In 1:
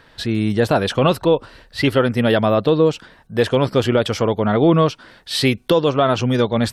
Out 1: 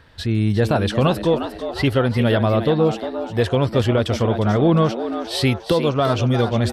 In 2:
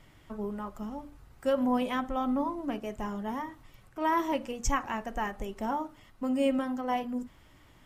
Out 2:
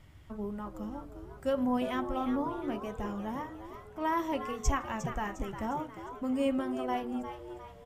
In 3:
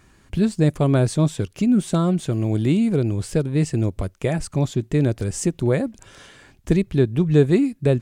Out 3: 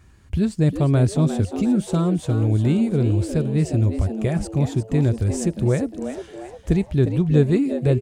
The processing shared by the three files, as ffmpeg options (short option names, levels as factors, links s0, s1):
-filter_complex "[0:a]equalizer=f=74:t=o:w=1.3:g=13.5,asplit=2[s0][s1];[s1]asplit=5[s2][s3][s4][s5][s6];[s2]adelay=355,afreqshift=110,volume=0.316[s7];[s3]adelay=710,afreqshift=220,volume=0.136[s8];[s4]adelay=1065,afreqshift=330,volume=0.0582[s9];[s5]adelay=1420,afreqshift=440,volume=0.0251[s10];[s6]adelay=1775,afreqshift=550,volume=0.0108[s11];[s7][s8][s9][s10][s11]amix=inputs=5:normalize=0[s12];[s0][s12]amix=inputs=2:normalize=0,volume=0.668"